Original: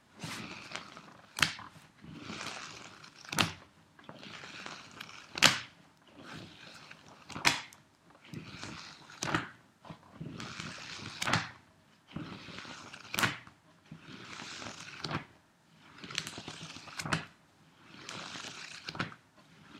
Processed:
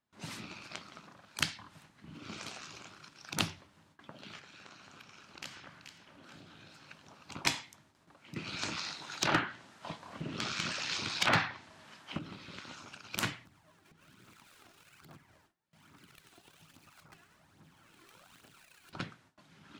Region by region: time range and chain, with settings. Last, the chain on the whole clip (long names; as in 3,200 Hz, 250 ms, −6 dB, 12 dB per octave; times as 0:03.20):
0:04.39–0:06.89: downward compressor 2 to 1, threshold −55 dBFS + delay that swaps between a low-pass and a high-pass 216 ms, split 1,700 Hz, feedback 57%, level −3 dB
0:08.36–0:12.19: low-shelf EQ 110 Hz +7.5 dB + treble cut that deepens with the level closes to 2,800 Hz, closed at −29.5 dBFS + mid-hump overdrive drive 19 dB, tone 6,500 Hz, clips at −9.5 dBFS
0:13.45–0:18.93: gap after every zero crossing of 0.082 ms + downward compressor 4 to 1, threshold −57 dBFS + phase shifter 1.2 Hz
whole clip: noise gate with hold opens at −53 dBFS; dynamic equaliser 1,400 Hz, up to −5 dB, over −46 dBFS, Q 0.78; level −1.5 dB